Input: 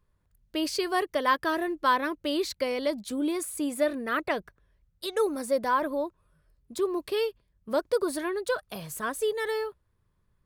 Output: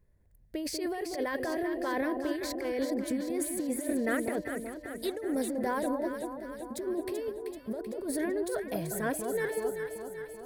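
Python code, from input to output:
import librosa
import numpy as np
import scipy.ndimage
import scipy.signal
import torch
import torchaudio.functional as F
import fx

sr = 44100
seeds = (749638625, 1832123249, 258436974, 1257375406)

y = fx.curve_eq(x, sr, hz=(720.0, 1200.0, 1900.0, 2900.0, 12000.0), db=(0, -16, 0, -12, -3))
y = fx.over_compress(y, sr, threshold_db=-33.0, ratio=-1.0)
y = fx.echo_alternate(y, sr, ms=192, hz=1100.0, feedback_pct=77, wet_db=-5.0)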